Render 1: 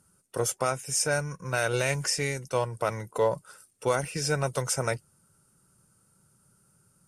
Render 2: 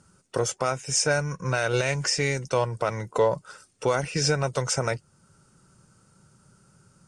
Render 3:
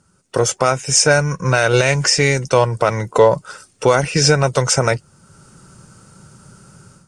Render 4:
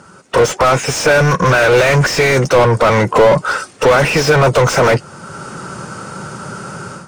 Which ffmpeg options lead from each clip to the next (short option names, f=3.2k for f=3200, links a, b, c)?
-af "lowpass=f=7.4k:w=0.5412,lowpass=f=7.4k:w=1.3066,alimiter=limit=-20.5dB:level=0:latency=1:release=428,volume=8.5dB"
-af "dynaudnorm=f=210:g=3:m=14dB"
-filter_complex "[0:a]asplit=2[a][b];[b]highpass=f=720:p=1,volume=33dB,asoftclip=type=tanh:threshold=-1.5dB[c];[a][c]amix=inputs=2:normalize=0,lowpass=f=1.2k:p=1,volume=-6dB"